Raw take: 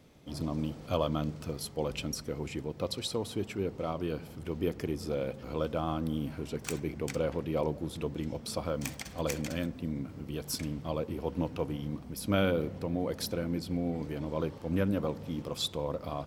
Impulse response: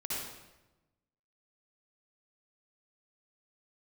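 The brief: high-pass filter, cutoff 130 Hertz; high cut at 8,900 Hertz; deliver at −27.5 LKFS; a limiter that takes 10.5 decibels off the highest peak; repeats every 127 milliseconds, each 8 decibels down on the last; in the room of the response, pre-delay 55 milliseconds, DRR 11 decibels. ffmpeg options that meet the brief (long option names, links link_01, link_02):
-filter_complex "[0:a]highpass=130,lowpass=8900,alimiter=limit=-24dB:level=0:latency=1,aecho=1:1:127|254|381|508|635:0.398|0.159|0.0637|0.0255|0.0102,asplit=2[link_01][link_02];[1:a]atrim=start_sample=2205,adelay=55[link_03];[link_02][link_03]afir=irnorm=-1:irlink=0,volume=-14.5dB[link_04];[link_01][link_04]amix=inputs=2:normalize=0,volume=8dB"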